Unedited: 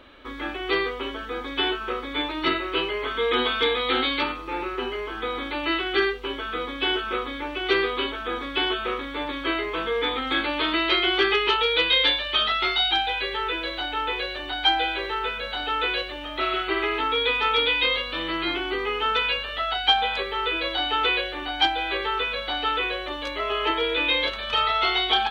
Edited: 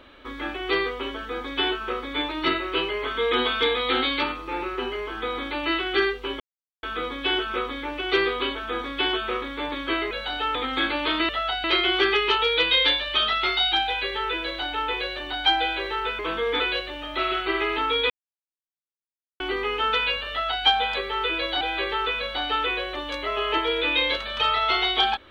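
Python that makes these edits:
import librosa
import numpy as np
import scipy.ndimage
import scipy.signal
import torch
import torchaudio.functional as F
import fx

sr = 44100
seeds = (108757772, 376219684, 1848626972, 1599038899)

y = fx.edit(x, sr, fx.insert_silence(at_s=6.4, length_s=0.43),
    fx.swap(start_s=9.68, length_s=0.41, other_s=15.38, other_length_s=0.44),
    fx.silence(start_s=17.32, length_s=1.3),
    fx.duplicate(start_s=19.52, length_s=0.35, to_s=10.83),
    fx.cut(start_s=20.83, length_s=0.91), tone=tone)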